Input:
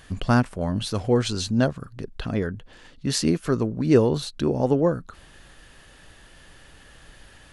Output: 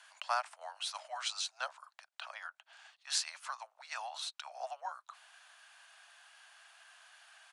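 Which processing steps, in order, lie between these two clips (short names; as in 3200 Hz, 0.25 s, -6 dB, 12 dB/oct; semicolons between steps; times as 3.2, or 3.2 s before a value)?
frequency shift -120 Hz; steep high-pass 650 Hz 72 dB/oct; downsampling 22050 Hz; gain -6.5 dB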